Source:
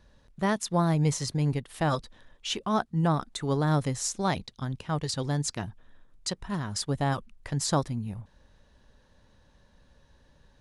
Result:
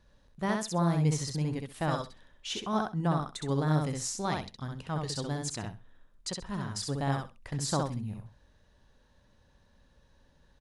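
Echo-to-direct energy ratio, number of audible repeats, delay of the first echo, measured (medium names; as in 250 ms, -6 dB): -3.5 dB, 3, 65 ms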